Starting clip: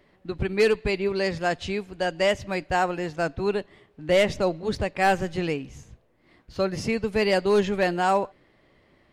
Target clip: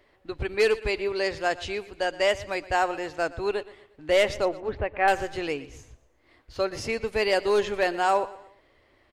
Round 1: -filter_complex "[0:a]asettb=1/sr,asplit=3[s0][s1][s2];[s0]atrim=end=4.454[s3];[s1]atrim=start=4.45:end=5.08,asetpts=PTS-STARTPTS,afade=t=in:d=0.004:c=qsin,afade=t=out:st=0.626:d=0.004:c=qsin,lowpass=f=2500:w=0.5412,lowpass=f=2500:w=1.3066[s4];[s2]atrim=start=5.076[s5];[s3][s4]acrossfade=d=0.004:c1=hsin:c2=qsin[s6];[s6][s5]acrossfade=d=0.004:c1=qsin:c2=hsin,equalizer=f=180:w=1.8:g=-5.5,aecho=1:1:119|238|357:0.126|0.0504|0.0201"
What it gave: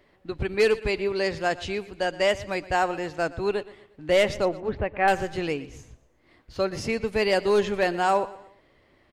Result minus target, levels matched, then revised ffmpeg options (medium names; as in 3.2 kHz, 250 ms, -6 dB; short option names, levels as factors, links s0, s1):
250 Hz band +3.0 dB
-filter_complex "[0:a]asettb=1/sr,asplit=3[s0][s1][s2];[s0]atrim=end=4.454[s3];[s1]atrim=start=4.45:end=5.08,asetpts=PTS-STARTPTS,afade=t=in:d=0.004:c=qsin,afade=t=out:st=0.626:d=0.004:c=qsin,lowpass=f=2500:w=0.5412,lowpass=f=2500:w=1.3066[s4];[s2]atrim=start=5.076[s5];[s3][s4]acrossfade=d=0.004:c1=hsin:c2=qsin[s6];[s6][s5]acrossfade=d=0.004:c1=qsin:c2=hsin,equalizer=f=180:w=1.8:g=-16,aecho=1:1:119|238|357:0.126|0.0504|0.0201"